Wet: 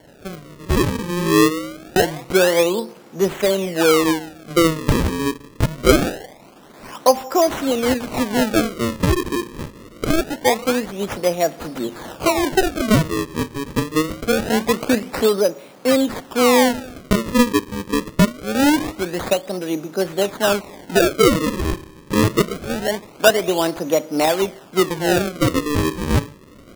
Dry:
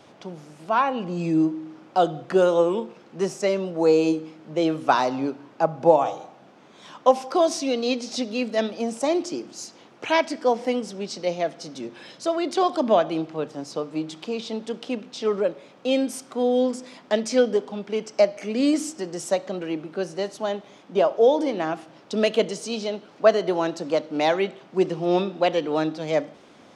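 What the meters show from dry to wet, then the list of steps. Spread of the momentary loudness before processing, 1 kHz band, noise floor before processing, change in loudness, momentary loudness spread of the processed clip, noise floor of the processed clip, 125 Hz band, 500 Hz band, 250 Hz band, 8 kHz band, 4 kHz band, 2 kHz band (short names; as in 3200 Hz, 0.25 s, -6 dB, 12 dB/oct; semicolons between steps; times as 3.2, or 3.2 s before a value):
12 LU, +2.5 dB, -51 dBFS, +4.5 dB, 10 LU, -44 dBFS, +12.5 dB, +3.0 dB, +6.5 dB, +10.5 dB, +8.0 dB, +9.5 dB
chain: recorder AGC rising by 5.6 dB/s; decimation with a swept rate 35×, swing 160% 0.24 Hz; gain +3 dB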